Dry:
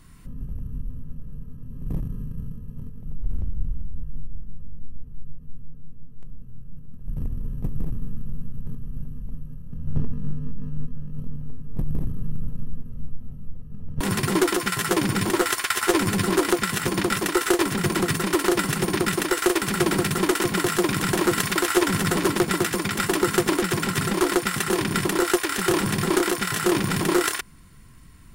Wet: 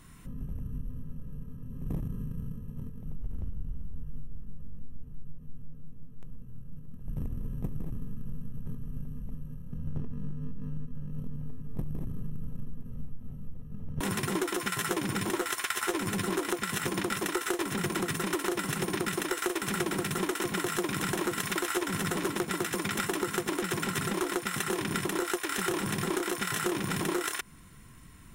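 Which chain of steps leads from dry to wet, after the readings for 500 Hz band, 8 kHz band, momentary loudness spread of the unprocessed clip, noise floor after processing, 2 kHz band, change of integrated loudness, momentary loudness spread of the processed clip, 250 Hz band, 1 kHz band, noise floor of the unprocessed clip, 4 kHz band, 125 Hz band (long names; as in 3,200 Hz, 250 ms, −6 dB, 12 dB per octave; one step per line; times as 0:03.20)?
−9.5 dB, −7.5 dB, 18 LU, −45 dBFS, −7.5 dB, −9.0 dB, 16 LU, −9.0 dB, −8.0 dB, −41 dBFS, −8.0 dB, −7.5 dB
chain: low-shelf EQ 96 Hz −6.5 dB
notch filter 4,600 Hz, Q 7.6
downward compressor, threshold −28 dBFS, peak gain reduction 12.5 dB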